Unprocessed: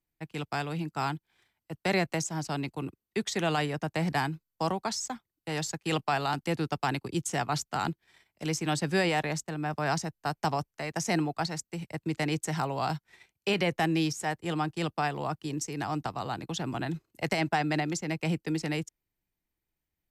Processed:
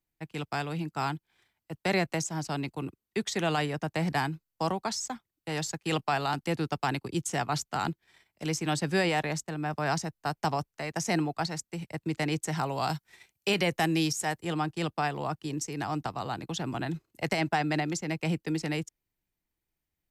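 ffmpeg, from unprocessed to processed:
ffmpeg -i in.wav -filter_complex "[0:a]asettb=1/sr,asplit=3[link_01][link_02][link_03];[link_01]atrim=end=12.664[link_04];[link_02]atrim=start=12.66:end=14.45,asetpts=PTS-STARTPTS,afade=type=in:duration=0.004:curve=qsin,afade=type=out:start_time=1.786:duration=0.004:curve=qsin,highshelf=frequency=5000:gain=8[link_05];[link_03]atrim=start=14.446[link_06];[link_04][link_05]acrossfade=duration=0.004:curve1=hsin:curve2=qsin[link_07];[link_07][link_06]acrossfade=duration=0.004:curve1=qsin:curve2=hsin" out.wav

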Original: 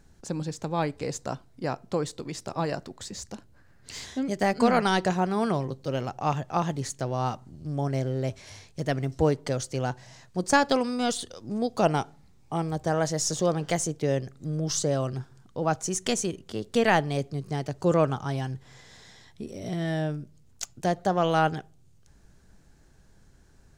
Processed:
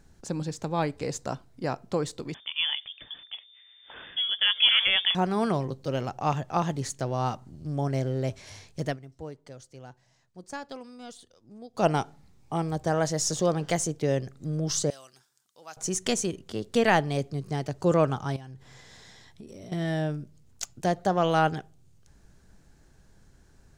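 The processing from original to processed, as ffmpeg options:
ffmpeg -i in.wav -filter_complex "[0:a]asettb=1/sr,asplit=3[link_01][link_02][link_03];[link_01]atrim=end=2.344[link_04];[link_02]atrim=start=2.34:end=5.15,asetpts=PTS-STARTPTS,afade=type=in:duration=0.004:curve=qsin,afade=type=out:start_time=2.806:duration=0.004:curve=qsin,lowpass=frequency=3100:width_type=q:width=0.5098,lowpass=frequency=3100:width_type=q:width=0.6013,lowpass=frequency=3100:width_type=q:width=0.9,lowpass=frequency=3100:width_type=q:width=2.563,afreqshift=-3600[link_05];[link_03]atrim=start=5.146[link_06];[link_04][link_05]acrossfade=duration=0.004:curve1=hsin:curve2=qsin[link_07];[link_07][link_06]acrossfade=duration=0.004:curve1=qsin:curve2=hsin,asettb=1/sr,asplit=3[link_08][link_09][link_10];[link_08]atrim=end=14.904[link_11];[link_09]atrim=start=14.9:end=15.77,asetpts=PTS-STARTPTS,afade=type=in:duration=0.004:curve=qsin,afade=type=out:start_time=0.866:duration=0.004:curve=qsin,aderivative[link_12];[link_10]atrim=start=15.766[link_13];[link_11][link_12]acrossfade=duration=0.004:curve1=hsin:curve2=qsin[link_14];[link_14][link_13]acrossfade=duration=0.004:curve1=qsin:curve2=hsin,asettb=1/sr,asplit=3[link_15][link_16][link_17];[link_15]atrim=end=18.364[link_18];[link_16]atrim=start=18.36:end=19.72,asetpts=PTS-STARTPTS,afade=type=in:duration=0.004:curve=qsin,afade=type=out:start_time=1.356:duration=0.004:curve=qsin,acompressor=threshold=-40dB:ratio=10:attack=3.2:release=140:knee=1:detection=peak[link_19];[link_17]atrim=start=19.716[link_20];[link_18][link_19]acrossfade=duration=0.004:curve1=hsin:curve2=qsin[link_21];[link_21][link_20]acrossfade=duration=0.004:curve1=qsin:curve2=hsin,asplit=3[link_22][link_23][link_24];[link_22]atrim=end=8.98,asetpts=PTS-STARTPTS,afade=type=out:start_time=8.86:duration=0.12:silence=0.141254[link_25];[link_23]atrim=start=8.98:end=11.73,asetpts=PTS-STARTPTS,volume=-17dB[link_26];[link_24]atrim=start=11.73,asetpts=PTS-STARTPTS,afade=type=in:duration=0.12:silence=0.141254[link_27];[link_25][link_26][link_27]concat=n=3:v=0:a=1" out.wav

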